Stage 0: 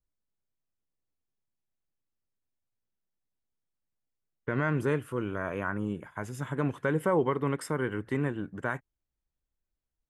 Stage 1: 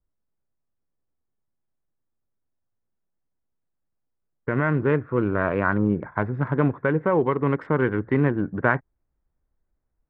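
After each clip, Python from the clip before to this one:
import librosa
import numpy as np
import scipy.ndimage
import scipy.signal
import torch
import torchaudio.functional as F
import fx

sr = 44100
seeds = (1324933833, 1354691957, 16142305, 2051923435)

y = fx.wiener(x, sr, points=15)
y = scipy.signal.sosfilt(scipy.signal.butter(4, 2700.0, 'lowpass', fs=sr, output='sos'), y)
y = fx.rider(y, sr, range_db=4, speed_s=0.5)
y = y * librosa.db_to_amplitude(8.5)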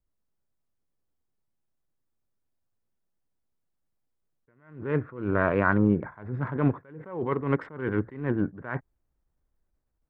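y = fx.attack_slew(x, sr, db_per_s=110.0)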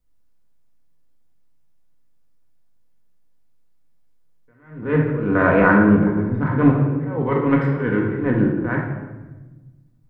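y = fx.room_shoebox(x, sr, seeds[0], volume_m3=710.0, walls='mixed', distance_m=1.9)
y = y * librosa.db_to_amplitude(5.0)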